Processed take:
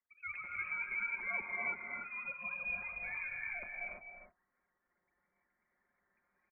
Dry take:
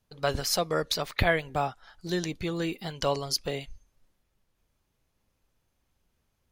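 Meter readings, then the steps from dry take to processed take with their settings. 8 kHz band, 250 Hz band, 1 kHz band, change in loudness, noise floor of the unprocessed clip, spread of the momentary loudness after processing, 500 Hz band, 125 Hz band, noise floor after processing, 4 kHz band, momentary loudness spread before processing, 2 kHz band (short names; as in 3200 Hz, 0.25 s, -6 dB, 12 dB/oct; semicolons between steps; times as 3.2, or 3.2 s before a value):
under -40 dB, -27.0 dB, -15.0 dB, -9.5 dB, -77 dBFS, 8 LU, -25.5 dB, -30.0 dB, -84 dBFS, under -40 dB, 9 LU, -2.0 dB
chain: sine-wave speech; comb 5.8 ms, depth 64%; reverse; compressor 6:1, threshold -50 dBFS, peak gain reduction 30 dB; reverse; random-step tremolo; air absorption 180 m; tapped delay 0.259/0.304 s -9.5/-10 dB; non-linear reverb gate 0.37 s rising, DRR -2 dB; inverted band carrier 2800 Hz; gain +8 dB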